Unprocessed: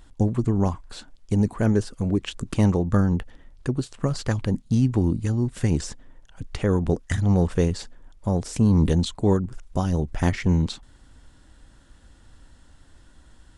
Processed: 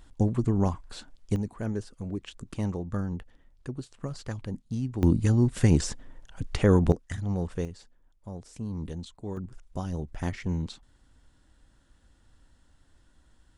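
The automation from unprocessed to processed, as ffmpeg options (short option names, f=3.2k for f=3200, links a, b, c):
-af "asetnsamples=n=441:p=0,asendcmd='1.36 volume volume -11dB;5.03 volume volume 1.5dB;6.92 volume volume -10dB;7.65 volume volume -16.5dB;9.37 volume volume -9.5dB',volume=-3dB"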